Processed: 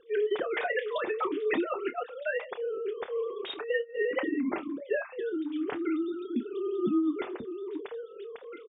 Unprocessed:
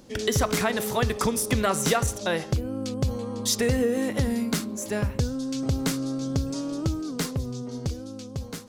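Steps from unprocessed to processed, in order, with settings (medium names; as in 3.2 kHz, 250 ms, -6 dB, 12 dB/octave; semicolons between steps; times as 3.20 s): formants replaced by sine waves; 2.08–2.67 s: high-pass 230 Hz 6 dB/octave; compressor with a negative ratio -25 dBFS, ratio -0.5; flange 0.47 Hz, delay 3.6 ms, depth 5.2 ms, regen -19%; doubling 28 ms -11.5 dB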